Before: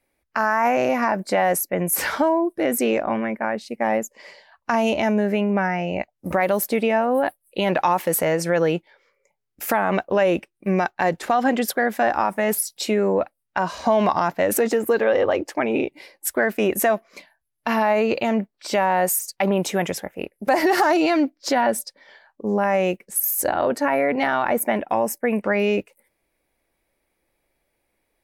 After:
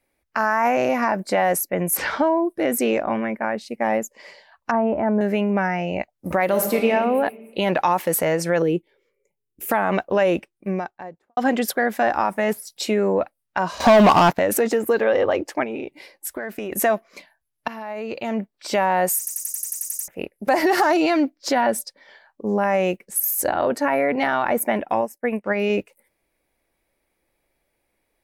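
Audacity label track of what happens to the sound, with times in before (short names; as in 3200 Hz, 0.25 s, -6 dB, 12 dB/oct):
1.970000	2.380000	LPF 4800 Hz
4.710000	5.210000	LPF 1500 Hz 24 dB/oct
6.450000	6.900000	reverb throw, RT60 1.5 s, DRR 2.5 dB
8.620000	9.710000	EQ curve 260 Hz 0 dB, 390 Hz +6 dB, 660 Hz -13 dB, 1500 Hz -15 dB, 2900 Hz -6 dB, 4900 Hz -13 dB, 9300 Hz -1 dB
10.270000	11.370000	studio fade out
12.010000	12.800000	de-esser amount 60%
13.800000	14.390000	sample leveller passes 3
15.630000	16.720000	compressor 10:1, threshold -25 dBFS
17.680000	18.550000	fade in quadratic, from -15 dB
19.180000	19.180000	stutter in place 0.09 s, 10 plays
25.010000	25.700000	upward expander 2.5:1, over -29 dBFS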